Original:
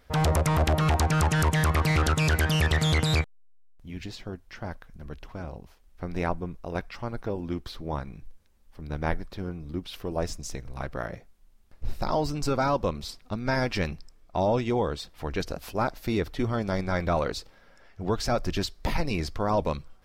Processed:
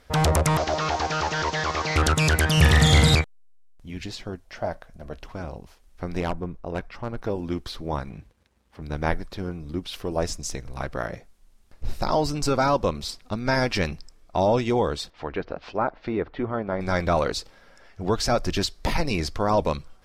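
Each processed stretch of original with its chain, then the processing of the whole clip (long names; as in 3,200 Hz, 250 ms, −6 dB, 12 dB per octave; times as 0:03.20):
0:00.57–0:01.96: linear delta modulator 32 kbit/s, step −38.5 dBFS + bass and treble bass −14 dB, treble +8 dB
0:02.57–0:03.15: high-pass filter 67 Hz + low-shelf EQ 140 Hz +10.5 dB + flutter between parallel walls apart 7.3 metres, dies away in 0.67 s
0:04.44–0:05.23: parametric band 640 Hz +12.5 dB 0.59 octaves + tuned comb filter 57 Hz, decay 0.19 s, mix 40%
0:06.20–0:07.22: high-shelf EQ 2,700 Hz −10.5 dB + hard clipping −24 dBFS + one half of a high-frequency compander decoder only
0:08.10–0:08.82: high-pass filter 52 Hz 24 dB per octave + bass and treble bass 0 dB, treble −9 dB + leveller curve on the samples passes 1
0:15.10–0:16.81: Bessel low-pass filter 3,600 Hz, order 4 + treble cut that deepens with the level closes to 1,600 Hz, closed at −26 dBFS + low-shelf EQ 180 Hz −10 dB
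whole clip: low-pass filter 12,000 Hz 12 dB per octave; bass and treble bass −2 dB, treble +3 dB; level +4 dB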